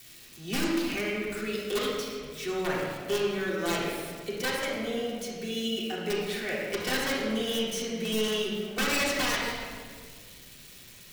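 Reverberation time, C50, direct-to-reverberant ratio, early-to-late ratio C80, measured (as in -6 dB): 1.8 s, -1.0 dB, -7.0 dB, 1.0 dB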